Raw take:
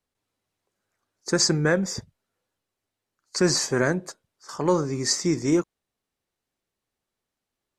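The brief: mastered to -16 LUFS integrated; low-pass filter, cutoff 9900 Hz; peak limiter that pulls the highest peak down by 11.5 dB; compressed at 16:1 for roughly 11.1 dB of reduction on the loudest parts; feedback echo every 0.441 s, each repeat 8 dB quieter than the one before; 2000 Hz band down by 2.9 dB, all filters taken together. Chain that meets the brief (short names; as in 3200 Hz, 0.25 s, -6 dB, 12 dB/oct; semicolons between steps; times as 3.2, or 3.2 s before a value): LPF 9900 Hz; bell 2000 Hz -4 dB; compressor 16:1, threshold -27 dBFS; limiter -27 dBFS; feedback echo 0.441 s, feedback 40%, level -8 dB; gain +21 dB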